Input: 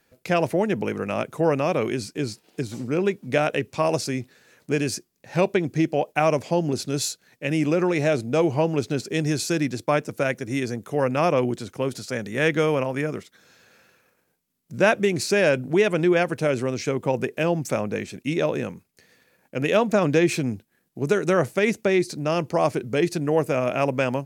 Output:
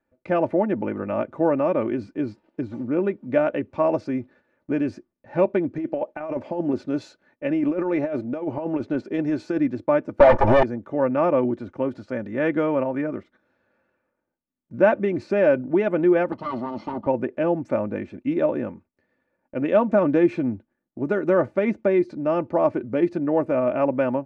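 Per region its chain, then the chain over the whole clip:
5.72–9.59 low shelf 170 Hz -7 dB + negative-ratio compressor -24 dBFS, ratio -0.5
10.2–10.63 minimum comb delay 1.7 ms + bell 920 Hz +12.5 dB 0.6 oct + sample leveller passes 5
16.32–17.07 minimum comb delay 0.94 ms + speaker cabinet 130–9000 Hz, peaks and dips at 210 Hz +6 dB, 1700 Hz -8 dB, 4400 Hz +10 dB, 7300 Hz -8 dB + notch 2300 Hz, Q 6
whole clip: gate -50 dBFS, range -9 dB; LPF 1300 Hz 12 dB/oct; comb 3.4 ms, depth 58%

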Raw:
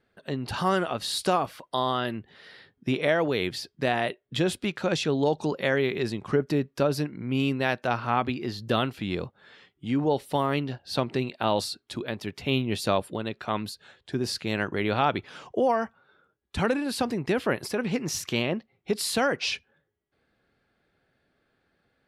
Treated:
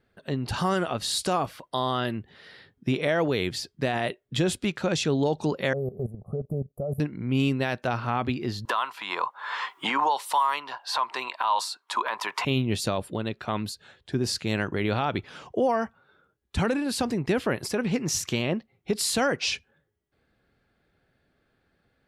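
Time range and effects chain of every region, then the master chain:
5.73–7 inverse Chebyshev band-stop 2100–4800 Hz, stop band 70 dB + comb 1.6 ms, depth 81% + level quantiser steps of 15 dB
8.65–12.45 resonant high-pass 1000 Hz, resonance Q 9.5 + three-band squash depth 100%
whole clip: low shelf 140 Hz +7 dB; limiter -15 dBFS; dynamic EQ 7200 Hz, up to +6 dB, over -49 dBFS, Q 1.5

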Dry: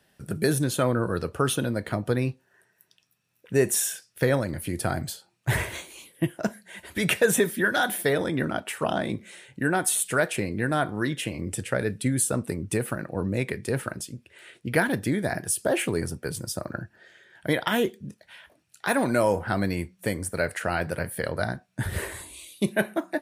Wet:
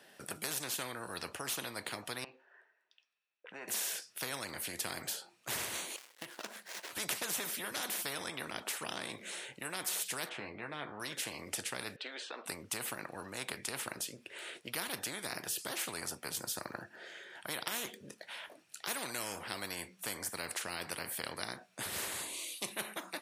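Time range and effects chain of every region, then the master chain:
2.24–3.68 compressor 12:1, threshold -34 dBFS + BPF 500–2500 Hz + three-band expander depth 70%
5.96–6.93 switching dead time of 0.15 ms + HPF 660 Hz 6 dB/oct + compressor, threshold -40 dBFS
10.29–11 LPF 1600 Hz + doubler 14 ms -6.5 dB
11.96–12.46 elliptic band-pass 460–3900 Hz, stop band 50 dB + compressor 3:1, threshold -31 dBFS
whole clip: HPF 290 Hz 12 dB/oct; high shelf 10000 Hz -5 dB; spectral compressor 4:1; gain -8.5 dB

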